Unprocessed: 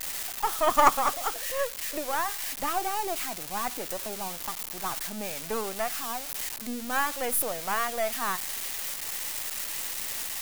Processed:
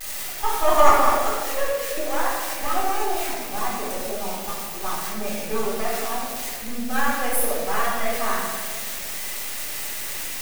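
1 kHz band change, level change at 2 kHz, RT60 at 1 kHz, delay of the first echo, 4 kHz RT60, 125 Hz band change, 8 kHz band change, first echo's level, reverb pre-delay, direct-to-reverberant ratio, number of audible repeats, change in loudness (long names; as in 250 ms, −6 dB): +5.0 dB, +5.0 dB, 1.5 s, no echo audible, 0.90 s, +8.5 dB, +2.5 dB, no echo audible, 3 ms, −7.0 dB, no echo audible, +4.5 dB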